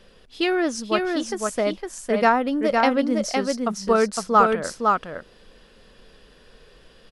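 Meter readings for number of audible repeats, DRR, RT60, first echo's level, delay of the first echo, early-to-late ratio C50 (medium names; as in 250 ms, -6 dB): 1, no reverb, no reverb, -3.5 dB, 509 ms, no reverb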